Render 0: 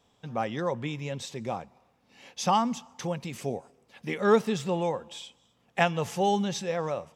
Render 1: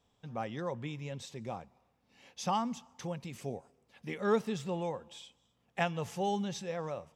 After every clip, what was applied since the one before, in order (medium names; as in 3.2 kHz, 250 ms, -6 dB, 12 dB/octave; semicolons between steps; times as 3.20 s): bass shelf 89 Hz +9 dB; trim -8 dB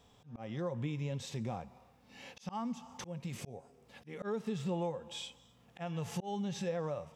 harmonic-percussive split percussive -10 dB; slow attack 470 ms; compression 3:1, threshold -49 dBFS, peak gain reduction 13 dB; trim +12.5 dB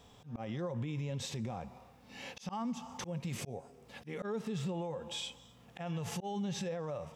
peak limiter -35.5 dBFS, peak gain reduction 10 dB; trim +5 dB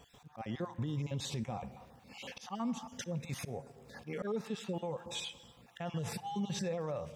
random holes in the spectrogram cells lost 23%; crackle 35 per s -57 dBFS; on a send at -17 dB: reverberation RT60 1.7 s, pre-delay 37 ms; on the sum: trim +1.5 dB